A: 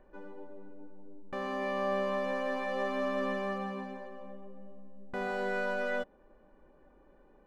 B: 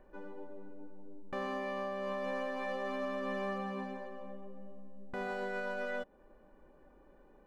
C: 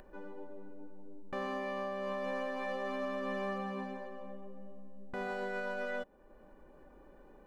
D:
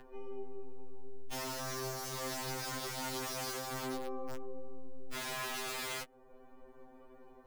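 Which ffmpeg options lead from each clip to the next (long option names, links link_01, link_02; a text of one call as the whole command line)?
ffmpeg -i in.wav -af "alimiter=level_in=5dB:limit=-24dB:level=0:latency=1:release=189,volume=-5dB" out.wav
ffmpeg -i in.wav -af "acompressor=mode=upward:threshold=-50dB:ratio=2.5" out.wav
ffmpeg -i in.wav -af "aeval=exprs='(mod(59.6*val(0)+1,2)-1)/59.6':channel_layout=same,afftfilt=real='re*2.45*eq(mod(b,6),0)':imag='im*2.45*eq(mod(b,6),0)':win_size=2048:overlap=0.75,volume=3dB" out.wav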